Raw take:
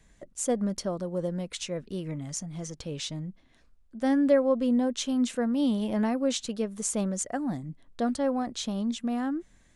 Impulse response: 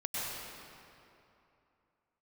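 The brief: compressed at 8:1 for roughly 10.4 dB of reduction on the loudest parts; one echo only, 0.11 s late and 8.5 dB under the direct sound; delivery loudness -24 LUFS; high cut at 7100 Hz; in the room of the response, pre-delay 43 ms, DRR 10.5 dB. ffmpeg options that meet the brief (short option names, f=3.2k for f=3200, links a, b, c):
-filter_complex "[0:a]lowpass=7.1k,acompressor=threshold=-27dB:ratio=8,aecho=1:1:110:0.376,asplit=2[a][b];[1:a]atrim=start_sample=2205,adelay=43[c];[b][c]afir=irnorm=-1:irlink=0,volume=-15.5dB[d];[a][d]amix=inputs=2:normalize=0,volume=8.5dB"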